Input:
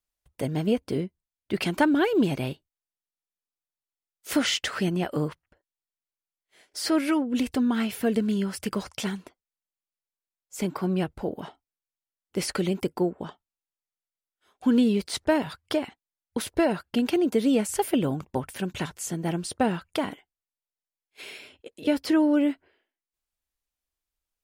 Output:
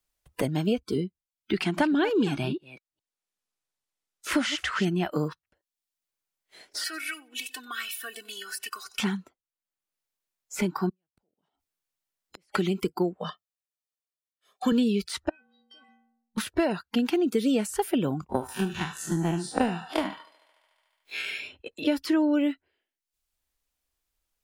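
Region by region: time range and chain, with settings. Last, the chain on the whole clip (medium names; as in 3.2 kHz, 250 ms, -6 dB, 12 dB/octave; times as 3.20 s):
1.53–4.85 s: chunks repeated in reverse 209 ms, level -13 dB + low-pass 11 kHz
6.84–8.99 s: differentiator + comb 2.7 ms, depth 75% + feedback delay 92 ms, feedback 33%, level -17.5 dB
10.89–12.55 s: compression 2.5:1, threshold -42 dBFS + inverted gate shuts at -36 dBFS, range -34 dB
13.19–14.72 s: high-pass 150 Hz + comb 1.7 ms, depth 63% + three bands expanded up and down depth 40%
15.29–16.38 s: inharmonic resonator 230 Hz, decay 0.82 s, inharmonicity 0.03 + low-pass that closes with the level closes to 1.1 kHz, closed at -39.5 dBFS + compression 4:1, threshold -53 dBFS
18.29–21.25 s: spectral blur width 98 ms + transient shaper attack +11 dB, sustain +1 dB + thinning echo 73 ms, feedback 72%, high-pass 370 Hz, level -13 dB
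whole clip: spectral noise reduction 15 dB; three bands compressed up and down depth 70%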